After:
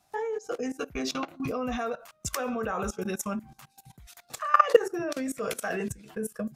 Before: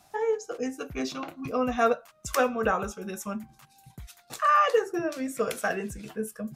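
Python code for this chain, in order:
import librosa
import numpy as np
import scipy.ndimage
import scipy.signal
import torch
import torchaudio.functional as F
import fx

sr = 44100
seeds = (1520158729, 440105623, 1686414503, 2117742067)

y = fx.level_steps(x, sr, step_db=19)
y = y * librosa.db_to_amplitude(7.5)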